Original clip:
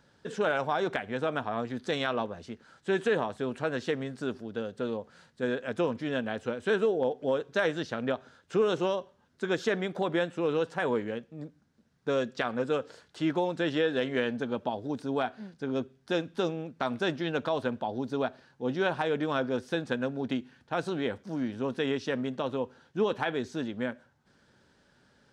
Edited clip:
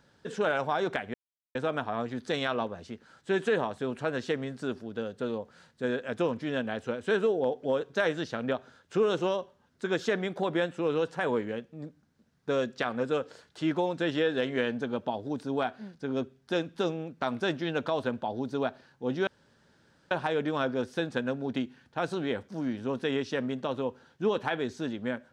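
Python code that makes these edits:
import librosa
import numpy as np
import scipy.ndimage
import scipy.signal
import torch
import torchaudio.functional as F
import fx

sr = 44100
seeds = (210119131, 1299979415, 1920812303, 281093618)

y = fx.edit(x, sr, fx.insert_silence(at_s=1.14, length_s=0.41),
    fx.insert_room_tone(at_s=18.86, length_s=0.84), tone=tone)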